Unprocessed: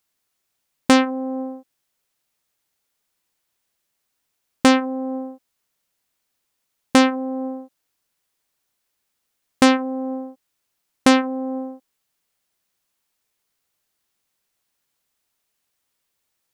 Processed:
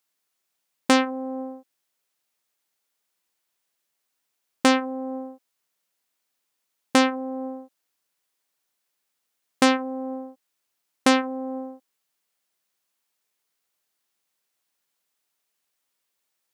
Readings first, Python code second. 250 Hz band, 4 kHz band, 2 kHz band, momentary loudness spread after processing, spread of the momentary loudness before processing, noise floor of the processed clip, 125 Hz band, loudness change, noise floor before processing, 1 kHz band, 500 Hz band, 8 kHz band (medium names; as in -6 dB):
-5.5 dB, -2.5 dB, -2.5 dB, 16 LU, 16 LU, -79 dBFS, no reading, -4.0 dB, -76 dBFS, -3.0 dB, -3.5 dB, -2.5 dB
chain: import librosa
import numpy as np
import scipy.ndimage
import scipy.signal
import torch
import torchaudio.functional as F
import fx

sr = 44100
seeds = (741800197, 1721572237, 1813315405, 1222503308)

y = fx.highpass(x, sr, hz=260.0, slope=6)
y = y * librosa.db_to_amplitude(-2.5)